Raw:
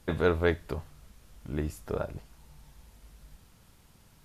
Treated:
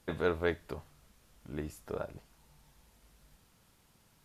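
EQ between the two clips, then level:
low-shelf EQ 120 Hz −8.5 dB
−4.5 dB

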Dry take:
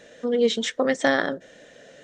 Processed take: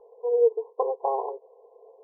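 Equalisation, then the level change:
linear-phase brick-wall band-pass 390–1,100 Hz
spectral tilt −1.5 dB per octave
phaser with its sweep stopped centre 590 Hz, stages 6
+4.0 dB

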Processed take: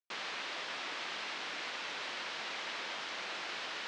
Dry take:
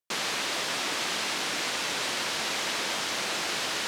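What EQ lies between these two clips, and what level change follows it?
high-frequency loss of the air 65 metres
head-to-tape spacing loss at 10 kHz 29 dB
spectral tilt +4 dB per octave
−6.0 dB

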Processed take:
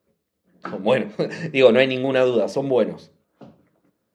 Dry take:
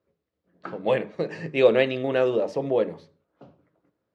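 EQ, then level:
parametric band 210 Hz +7 dB 0.44 octaves
high-shelf EQ 4,400 Hz +11 dB
+3.5 dB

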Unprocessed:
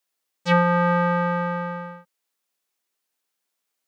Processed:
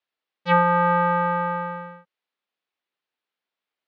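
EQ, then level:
low-pass filter 3,900 Hz 24 dB per octave
low-shelf EQ 210 Hz −3.5 dB
dynamic equaliser 970 Hz, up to +7 dB, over −35 dBFS, Q 1.5
−2.0 dB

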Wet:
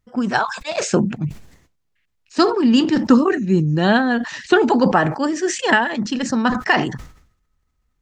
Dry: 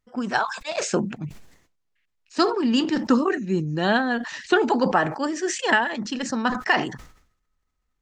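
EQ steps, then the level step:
parametric band 86 Hz +7.5 dB 2.9 octaves
+3.5 dB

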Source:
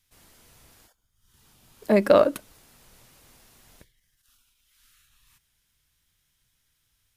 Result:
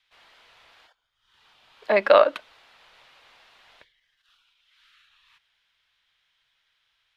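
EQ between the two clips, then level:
three-way crossover with the lows and the highs turned down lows −22 dB, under 560 Hz, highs −22 dB, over 5,500 Hz
high shelf with overshoot 4,600 Hz −6.5 dB, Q 1.5
+6.0 dB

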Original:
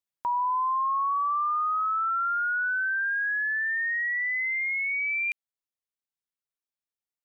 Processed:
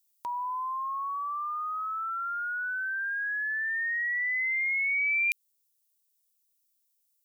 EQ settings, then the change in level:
spectral tilt +4 dB per octave
parametric band 1,300 Hz −14.5 dB 2.5 octaves
+6.5 dB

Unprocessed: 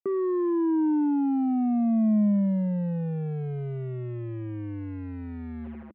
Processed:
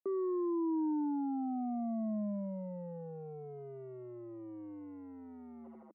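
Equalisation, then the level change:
Savitzky-Golay smoothing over 65 samples
high-pass filter 350 Hz 12 dB per octave
−5.5 dB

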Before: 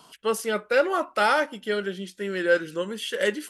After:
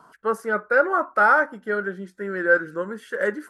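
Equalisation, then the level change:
high shelf with overshoot 2,100 Hz −11.5 dB, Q 3
0.0 dB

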